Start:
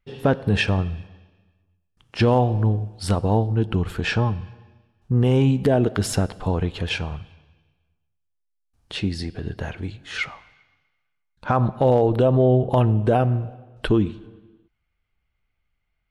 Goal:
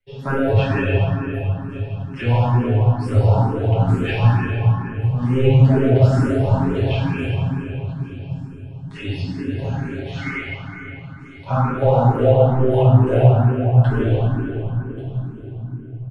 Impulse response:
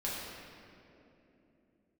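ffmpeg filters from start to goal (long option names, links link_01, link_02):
-filter_complex "[0:a]acrossover=split=2900[link_01][link_02];[link_02]acompressor=threshold=-46dB:ratio=4:attack=1:release=60[link_03];[link_01][link_03]amix=inputs=2:normalize=0,aecho=1:1:7.4:0.88,acrossover=split=120|380|2600[link_04][link_05][link_06][link_07];[link_05]asoftclip=type=tanh:threshold=-22dB[link_08];[link_07]aecho=1:1:1135|2270|3405:0.188|0.0622|0.0205[link_09];[link_04][link_08][link_06][link_09]amix=inputs=4:normalize=0[link_10];[1:a]atrim=start_sample=2205,asetrate=24696,aresample=44100[link_11];[link_10][link_11]afir=irnorm=-1:irlink=0,asplit=2[link_12][link_13];[link_13]afreqshift=2.2[link_14];[link_12][link_14]amix=inputs=2:normalize=1,volume=-4dB"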